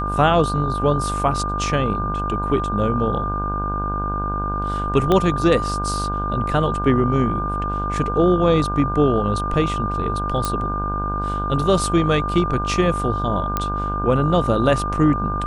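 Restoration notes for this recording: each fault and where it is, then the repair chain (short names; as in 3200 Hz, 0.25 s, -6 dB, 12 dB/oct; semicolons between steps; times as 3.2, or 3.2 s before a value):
buzz 50 Hz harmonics 32 -26 dBFS
tone 1200 Hz -24 dBFS
5.12 pop -7 dBFS
10.45 pop
13.57 pop -7 dBFS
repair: de-click; de-hum 50 Hz, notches 32; notch 1200 Hz, Q 30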